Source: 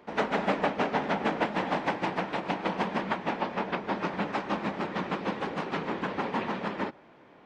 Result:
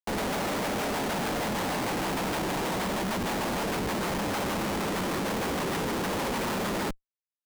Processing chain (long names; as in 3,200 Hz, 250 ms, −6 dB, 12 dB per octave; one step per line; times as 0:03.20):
in parallel at −1.5 dB: downward compressor, threshold −40 dBFS, peak gain reduction 17 dB
on the sum: comparator with hysteresis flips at −39 dBFS